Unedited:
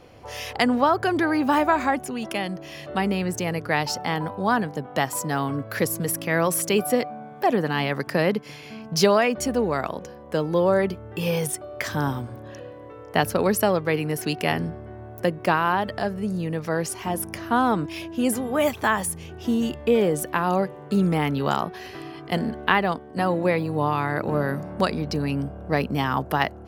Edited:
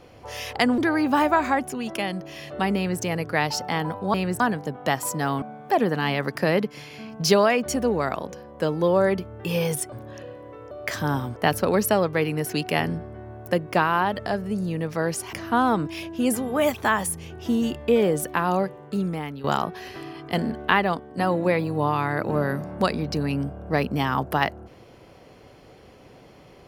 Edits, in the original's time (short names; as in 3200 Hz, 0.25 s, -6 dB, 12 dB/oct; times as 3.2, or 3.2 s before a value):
0.78–1.14 cut
3.12–3.38 copy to 4.5
5.52–7.14 cut
11.64–12.29 move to 13.08
17.05–17.32 cut
20.46–21.43 fade out, to -13.5 dB